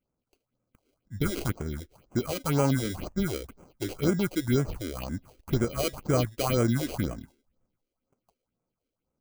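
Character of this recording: aliases and images of a low sample rate 1800 Hz, jitter 0%; phasing stages 4, 2 Hz, lowest notch 140–3900 Hz

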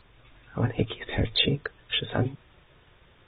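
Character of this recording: tremolo saw down 6.3 Hz, depth 40%; a quantiser's noise floor 10-bit, dither triangular; AAC

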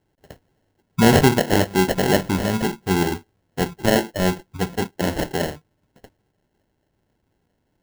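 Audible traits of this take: aliases and images of a low sample rate 1200 Hz, jitter 0%

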